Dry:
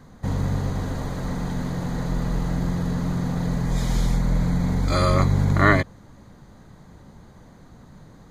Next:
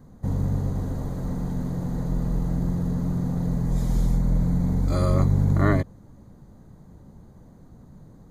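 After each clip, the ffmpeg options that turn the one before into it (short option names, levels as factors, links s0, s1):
-af "equalizer=f=2700:w=0.37:g=-14"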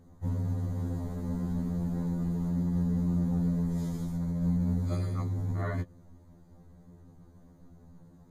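-af "alimiter=limit=0.15:level=0:latency=1:release=80,afftfilt=real='re*2*eq(mod(b,4),0)':imag='im*2*eq(mod(b,4),0)':win_size=2048:overlap=0.75,volume=0.631"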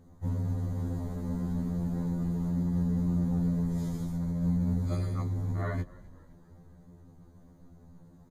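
-filter_complex "[0:a]asplit=5[s0][s1][s2][s3][s4];[s1]adelay=259,afreqshift=-61,volume=0.0891[s5];[s2]adelay=518,afreqshift=-122,volume=0.049[s6];[s3]adelay=777,afreqshift=-183,volume=0.0269[s7];[s4]adelay=1036,afreqshift=-244,volume=0.0148[s8];[s0][s5][s6][s7][s8]amix=inputs=5:normalize=0"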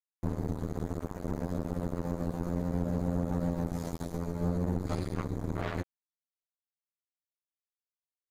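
-af "acompressor=threshold=0.0224:ratio=2.5,acrusher=bits=4:mix=0:aa=0.5,volume=1.41"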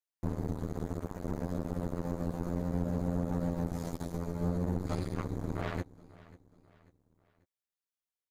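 -af "aecho=1:1:541|1082|1623:0.0944|0.0406|0.0175,volume=0.841"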